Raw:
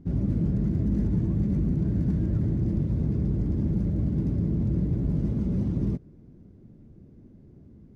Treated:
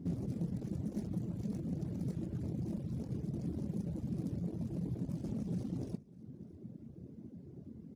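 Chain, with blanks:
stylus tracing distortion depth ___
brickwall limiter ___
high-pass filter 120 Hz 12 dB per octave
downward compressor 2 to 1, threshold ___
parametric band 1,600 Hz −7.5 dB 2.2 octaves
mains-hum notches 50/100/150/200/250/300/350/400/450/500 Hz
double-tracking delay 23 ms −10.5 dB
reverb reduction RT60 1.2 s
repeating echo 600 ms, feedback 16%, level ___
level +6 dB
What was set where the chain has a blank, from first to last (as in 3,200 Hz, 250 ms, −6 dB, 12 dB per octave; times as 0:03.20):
0.46 ms, −24 dBFS, −44 dBFS, −21.5 dB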